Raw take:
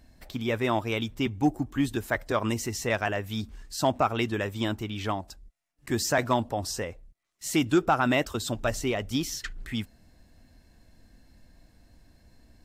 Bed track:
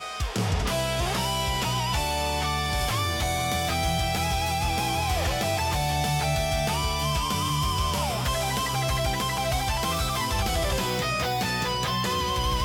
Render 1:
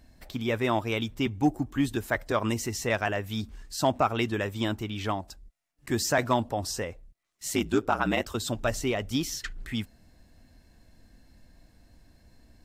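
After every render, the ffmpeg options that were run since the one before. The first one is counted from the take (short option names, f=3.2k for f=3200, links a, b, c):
-filter_complex "[0:a]asettb=1/sr,asplit=3[a][b][c];[a]atrim=end=7.534[d];[b]atrim=start=7.53:end=8.28,asetpts=PTS-STARTPTS,afade=t=in:d=0.004:c=qsin,afade=t=out:st=0.746:d=0.004:c=qsin,aeval=exprs='val(0)*sin(2*PI*54*n/s)':c=same[e];[c]atrim=start=8.276[f];[d][e]acrossfade=d=0.004:c1=hsin:c2=qsin[g];[g][f]acrossfade=d=0.004:c1=qsin:c2=hsin"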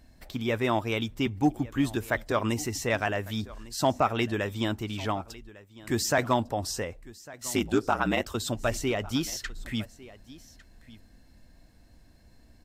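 -af "aecho=1:1:1152:0.1"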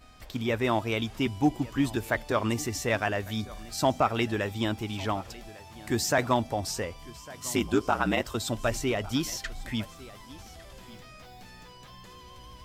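-filter_complex "[1:a]volume=-23dB[a];[0:a][a]amix=inputs=2:normalize=0"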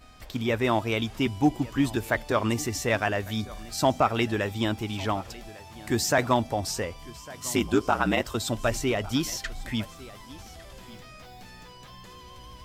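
-af "volume=2dB"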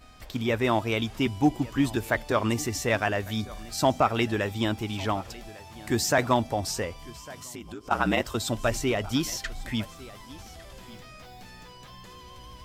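-filter_complex "[0:a]asettb=1/sr,asplit=3[a][b][c];[a]atrim=end=7.344[d];[b]atrim=start=7.34:end=7.91,asetpts=PTS-STARTPTS,afade=t=in:d=0.004:c=qsin,afade=t=out:st=0.566:d=0.004:c=qsin,acompressor=threshold=-39dB:ratio=4:attack=3.2:release=140:knee=1:detection=peak[e];[c]atrim=start=7.906[f];[d][e]acrossfade=d=0.004:c1=hsin:c2=qsin[g];[g][f]acrossfade=d=0.004:c1=qsin:c2=hsin"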